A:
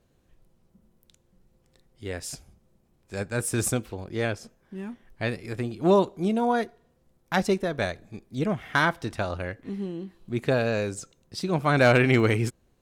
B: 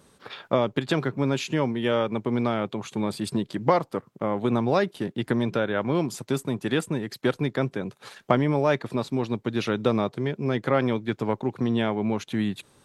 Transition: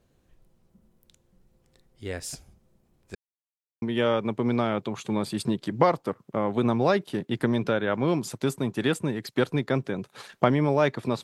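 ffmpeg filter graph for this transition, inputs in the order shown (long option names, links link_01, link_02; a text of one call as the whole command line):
ffmpeg -i cue0.wav -i cue1.wav -filter_complex "[0:a]apad=whole_dur=11.23,atrim=end=11.23,asplit=2[link_01][link_02];[link_01]atrim=end=3.15,asetpts=PTS-STARTPTS,afade=type=out:start_time=3.146:duration=0.004:curve=hsin[link_03];[link_02]atrim=start=3.15:end=3.82,asetpts=PTS-STARTPTS,volume=0[link_04];[1:a]atrim=start=1.69:end=9.1,asetpts=PTS-STARTPTS,afade=type=in:duration=0.004:curve=hsin[link_05];[link_03][link_04][link_05]concat=n=3:v=0:a=1" out.wav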